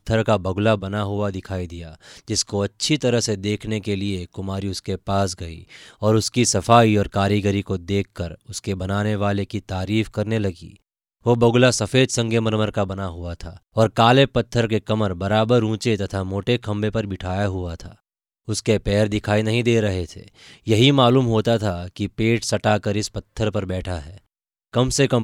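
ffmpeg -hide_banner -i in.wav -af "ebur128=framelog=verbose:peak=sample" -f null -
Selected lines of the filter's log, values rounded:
Integrated loudness:
  I:         -20.9 LUFS
  Threshold: -31.3 LUFS
Loudness range:
  LRA:         4.7 LU
  Threshold: -41.3 LUFS
  LRA low:   -24.2 LUFS
  LRA high:  -19.4 LUFS
Sample peak:
  Peak:       -1.2 dBFS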